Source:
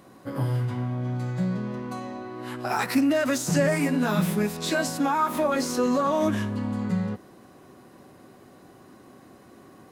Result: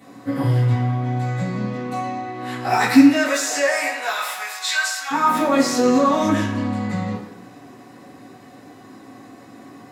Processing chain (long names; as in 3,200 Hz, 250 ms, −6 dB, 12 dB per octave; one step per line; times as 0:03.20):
0:03.07–0:05.10: high-pass filter 380 Hz → 1,200 Hz 24 dB per octave
convolution reverb RT60 1.0 s, pre-delay 3 ms, DRR −11 dB
level −1 dB